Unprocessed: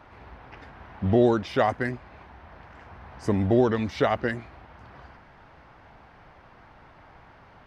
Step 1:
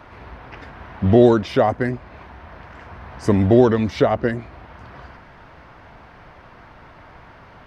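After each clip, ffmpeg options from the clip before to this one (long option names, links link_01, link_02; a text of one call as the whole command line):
ffmpeg -i in.wav -filter_complex "[0:a]bandreject=frequency=810:width=14,acrossover=split=920[link_01][link_02];[link_02]alimiter=level_in=3.5dB:limit=-24dB:level=0:latency=1:release=388,volume=-3.5dB[link_03];[link_01][link_03]amix=inputs=2:normalize=0,volume=7.5dB" out.wav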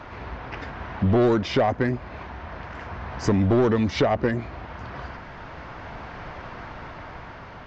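ffmpeg -i in.wav -af "dynaudnorm=framelen=400:gausssize=7:maxgain=4.5dB,aresample=16000,asoftclip=type=tanh:threshold=-11.5dB,aresample=44100,acompressor=threshold=-25dB:ratio=2,volume=3.5dB" out.wav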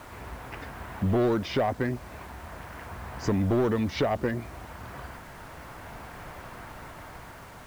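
ffmpeg -i in.wav -af "acrusher=bits=7:mix=0:aa=0.000001,volume=-5dB" out.wav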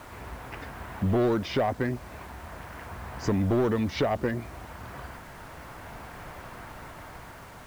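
ffmpeg -i in.wav -af anull out.wav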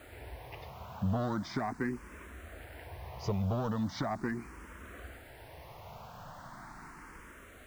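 ffmpeg -i in.wav -filter_complex "[0:a]asplit=2[link_01][link_02];[link_02]afreqshift=0.39[link_03];[link_01][link_03]amix=inputs=2:normalize=1,volume=-3.5dB" out.wav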